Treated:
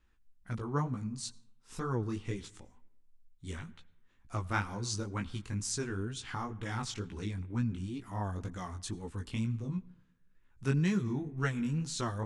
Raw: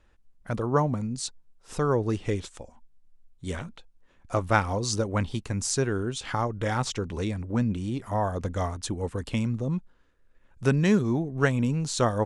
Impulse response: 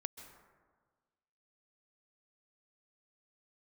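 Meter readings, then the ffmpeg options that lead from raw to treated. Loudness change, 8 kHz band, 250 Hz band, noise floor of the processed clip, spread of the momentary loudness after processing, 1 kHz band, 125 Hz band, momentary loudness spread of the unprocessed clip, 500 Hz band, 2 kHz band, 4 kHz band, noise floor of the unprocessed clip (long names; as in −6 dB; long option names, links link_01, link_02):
−8.5 dB, −7.5 dB, −8.0 dB, −67 dBFS, 9 LU, −10.5 dB, −7.0 dB, 10 LU, −13.5 dB, −8.0 dB, −7.0 dB, −61 dBFS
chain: -filter_complex "[0:a]equalizer=frequency=580:width=1.8:gain=-12,flanger=delay=15.5:depth=6.1:speed=2.1,asplit=2[link_01][link_02];[1:a]atrim=start_sample=2205,asetrate=70560,aresample=44100[link_03];[link_02][link_03]afir=irnorm=-1:irlink=0,volume=-5.5dB[link_04];[link_01][link_04]amix=inputs=2:normalize=0,volume=-6dB"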